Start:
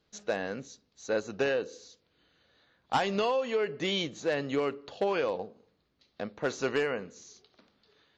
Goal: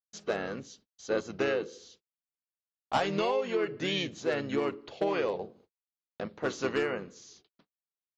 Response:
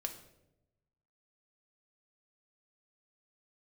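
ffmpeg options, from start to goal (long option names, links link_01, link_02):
-filter_complex "[0:a]agate=range=-47dB:threshold=-58dB:ratio=16:detection=peak,asplit=2[link_01][link_02];[link_02]asetrate=35002,aresample=44100,atempo=1.25992,volume=-6dB[link_03];[link_01][link_03]amix=inputs=2:normalize=0,volume=-1.5dB"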